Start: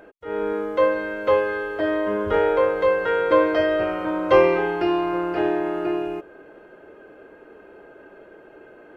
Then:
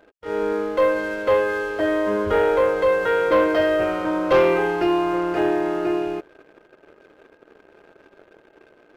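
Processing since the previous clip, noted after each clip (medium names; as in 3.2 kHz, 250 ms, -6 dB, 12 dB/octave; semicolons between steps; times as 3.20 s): waveshaping leveller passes 2; trim -5.5 dB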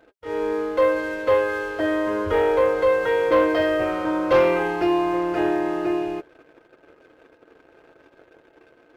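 comb of notches 200 Hz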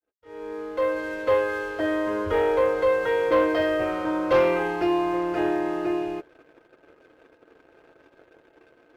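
fade-in on the opening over 1.22 s; trim -2.5 dB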